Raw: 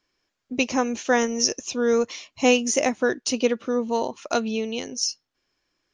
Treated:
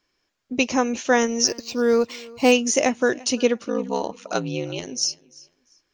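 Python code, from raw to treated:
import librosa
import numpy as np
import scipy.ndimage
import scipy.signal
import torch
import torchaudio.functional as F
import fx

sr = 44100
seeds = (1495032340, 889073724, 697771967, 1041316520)

y = fx.ring_mod(x, sr, carrier_hz=fx.line((3.64, 24.0), (4.86, 100.0)), at=(3.64, 4.86), fade=0.02)
y = fx.echo_feedback(y, sr, ms=345, feedback_pct=25, wet_db=-23)
y = fx.resample_linear(y, sr, factor=4, at=(1.47, 2.52))
y = F.gain(torch.from_numpy(y), 2.0).numpy()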